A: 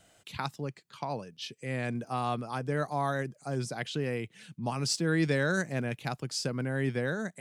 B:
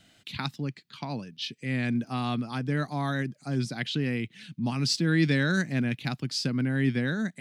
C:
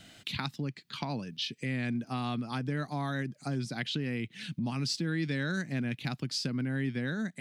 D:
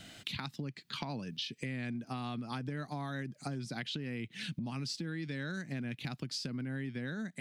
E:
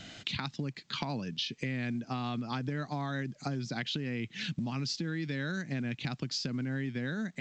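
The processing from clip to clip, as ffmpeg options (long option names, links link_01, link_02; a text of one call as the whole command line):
ffmpeg -i in.wav -af "equalizer=frequency=125:width_type=o:width=1:gain=3,equalizer=frequency=250:width_type=o:width=1:gain=9,equalizer=frequency=500:width_type=o:width=1:gain=-6,equalizer=frequency=1000:width_type=o:width=1:gain=-3,equalizer=frequency=2000:width_type=o:width=1:gain=4,equalizer=frequency=4000:width_type=o:width=1:gain=8,equalizer=frequency=8000:width_type=o:width=1:gain=-5" out.wav
ffmpeg -i in.wav -af "acompressor=threshold=-40dB:ratio=3,volume=6dB" out.wav
ffmpeg -i in.wav -af "acompressor=threshold=-38dB:ratio=6,volume=2dB" out.wav
ffmpeg -i in.wav -af "volume=4dB" -ar 16000 -c:a pcm_alaw out.wav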